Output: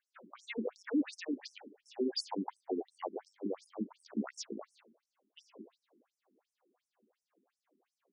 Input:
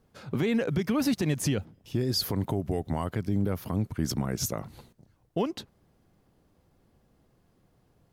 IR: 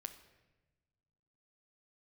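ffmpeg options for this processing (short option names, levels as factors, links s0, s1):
-filter_complex "[0:a]asettb=1/sr,asplit=3[s0][s1][s2];[s0]atrim=end=1.364[s3];[s1]atrim=start=1.36:end=3.24,asetpts=PTS-STARTPTS,afade=t=in:d=0.004:c=qsin,afade=t=out:st=1.876:d=0.004:c=qsin,equalizer=f=800:t=o:w=0.33:g=12,equalizer=f=1250:t=o:w=0.33:g=-8,equalizer=f=2000:t=o:w=0.33:g=3[s4];[s2]atrim=start=3.236[s5];[s3][s4]acrossfade=d=0.004:c1=hsin:c2=qsin[s6];[s6][s5]acrossfade=d=0.004:c1=qsin:c2=hsin,asplit=2[s7][s8];[1:a]atrim=start_sample=2205,lowpass=3700[s9];[s8][s9]afir=irnorm=-1:irlink=0,volume=1.06[s10];[s7][s10]amix=inputs=2:normalize=0,afftfilt=real='re*between(b*sr/1024,270*pow(7500/270,0.5+0.5*sin(2*PI*2.8*pts/sr))/1.41,270*pow(7500/270,0.5+0.5*sin(2*PI*2.8*pts/sr))*1.41)':imag='im*between(b*sr/1024,270*pow(7500/270,0.5+0.5*sin(2*PI*2.8*pts/sr))/1.41,270*pow(7500/270,0.5+0.5*sin(2*PI*2.8*pts/sr))*1.41)':win_size=1024:overlap=0.75,volume=0.562"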